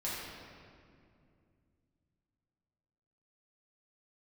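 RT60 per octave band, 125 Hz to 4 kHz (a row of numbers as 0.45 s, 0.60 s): 3.7 s, 3.4 s, 2.6 s, 2.2 s, 1.9 s, 1.5 s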